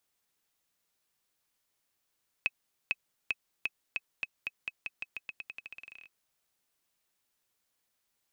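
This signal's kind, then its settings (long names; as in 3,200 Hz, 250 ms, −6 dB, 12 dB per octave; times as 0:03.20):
bouncing ball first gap 0.45 s, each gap 0.88, 2,560 Hz, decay 36 ms −15 dBFS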